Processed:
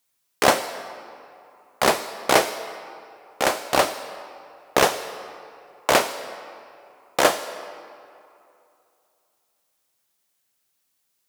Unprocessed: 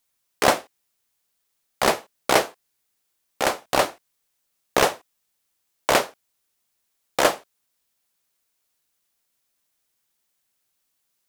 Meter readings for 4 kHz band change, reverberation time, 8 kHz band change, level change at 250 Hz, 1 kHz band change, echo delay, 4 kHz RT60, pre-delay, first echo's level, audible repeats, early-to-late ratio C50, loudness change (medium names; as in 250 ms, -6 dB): +1.5 dB, 2.7 s, +1.5 dB, +1.0 dB, +1.5 dB, no echo, 1.5 s, 21 ms, no echo, no echo, 11.5 dB, +0.5 dB